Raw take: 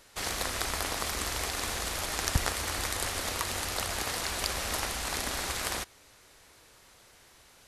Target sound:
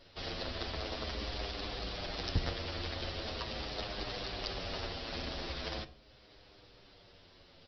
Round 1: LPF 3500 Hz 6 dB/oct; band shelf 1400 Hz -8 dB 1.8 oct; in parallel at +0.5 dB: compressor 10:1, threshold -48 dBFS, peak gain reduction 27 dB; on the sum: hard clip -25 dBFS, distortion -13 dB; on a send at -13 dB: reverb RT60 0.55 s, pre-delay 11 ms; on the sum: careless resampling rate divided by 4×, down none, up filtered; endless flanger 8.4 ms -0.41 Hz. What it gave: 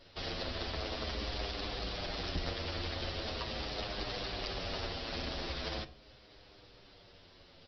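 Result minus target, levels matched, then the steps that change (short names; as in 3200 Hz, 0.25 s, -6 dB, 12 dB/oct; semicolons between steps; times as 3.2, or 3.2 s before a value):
compressor: peak gain reduction -10.5 dB; hard clip: distortion +15 dB
change: compressor 10:1, threshold -59.5 dBFS, peak gain reduction 37.5 dB; change: hard clip -16 dBFS, distortion -28 dB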